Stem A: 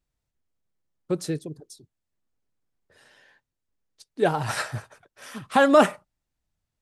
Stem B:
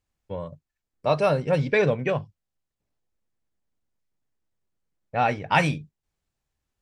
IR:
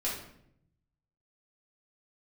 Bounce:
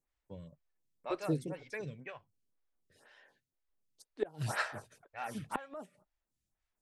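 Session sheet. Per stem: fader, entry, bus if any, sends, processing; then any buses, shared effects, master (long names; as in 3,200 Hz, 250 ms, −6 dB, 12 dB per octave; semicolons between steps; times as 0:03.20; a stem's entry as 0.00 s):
−3.5 dB, 0.00 s, no send, no processing
−7.5 dB, 0.00 s, no send, octave-band graphic EQ 500/2,000/8,000 Hz −5/+5/+8 dB; automatic ducking −10 dB, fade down 1.35 s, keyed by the first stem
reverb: not used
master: pitch vibrato 3.5 Hz 28 cents; gate with flip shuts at −16 dBFS, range −26 dB; phaser with staggered stages 2 Hz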